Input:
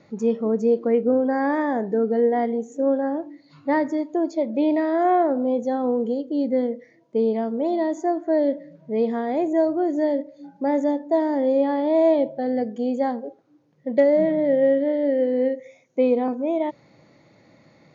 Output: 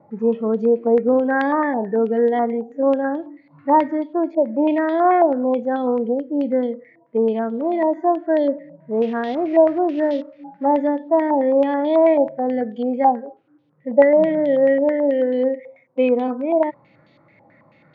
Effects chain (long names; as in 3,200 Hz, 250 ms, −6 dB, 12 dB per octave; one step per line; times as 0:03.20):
0:08.92–0:10.64: variable-slope delta modulation 32 kbit/s
harmonic and percussive parts rebalanced percussive −12 dB
low-pass on a step sequencer 9.2 Hz 850–3,400 Hz
level +1.5 dB